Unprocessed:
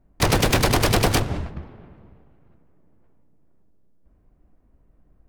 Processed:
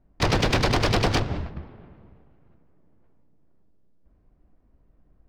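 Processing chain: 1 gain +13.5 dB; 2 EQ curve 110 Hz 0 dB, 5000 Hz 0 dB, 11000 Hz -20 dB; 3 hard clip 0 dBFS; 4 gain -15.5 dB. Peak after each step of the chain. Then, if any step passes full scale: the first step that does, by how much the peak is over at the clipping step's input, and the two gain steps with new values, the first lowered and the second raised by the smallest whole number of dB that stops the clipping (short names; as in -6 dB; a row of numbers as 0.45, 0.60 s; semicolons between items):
+2.5, +4.0, 0.0, -15.5 dBFS; step 1, 4.0 dB; step 1 +9.5 dB, step 4 -11.5 dB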